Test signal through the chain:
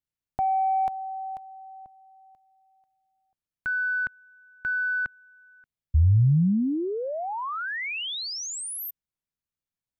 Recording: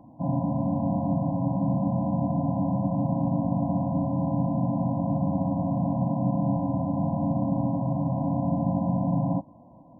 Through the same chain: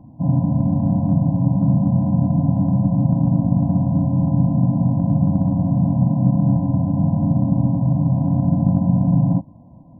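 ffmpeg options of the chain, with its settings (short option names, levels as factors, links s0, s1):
-af "aeval=exprs='0.224*(cos(1*acos(clip(val(0)/0.224,-1,1)))-cos(1*PI/2))+0.0141*(cos(3*acos(clip(val(0)/0.224,-1,1)))-cos(3*PI/2))':c=same,bass=f=250:g=14,treble=f=4000:g=-3"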